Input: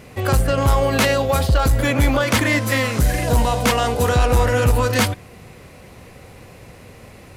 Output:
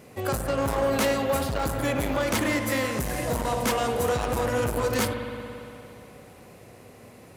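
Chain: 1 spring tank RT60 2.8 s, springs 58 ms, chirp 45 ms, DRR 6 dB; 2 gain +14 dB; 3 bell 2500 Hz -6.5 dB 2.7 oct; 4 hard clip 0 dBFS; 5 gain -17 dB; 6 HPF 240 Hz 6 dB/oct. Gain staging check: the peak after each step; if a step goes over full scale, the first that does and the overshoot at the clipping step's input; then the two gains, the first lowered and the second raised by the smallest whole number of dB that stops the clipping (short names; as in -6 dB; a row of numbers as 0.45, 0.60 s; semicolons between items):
-3.5, +10.5, +9.0, 0.0, -17.0, -12.5 dBFS; step 2, 9.0 dB; step 2 +5 dB, step 5 -8 dB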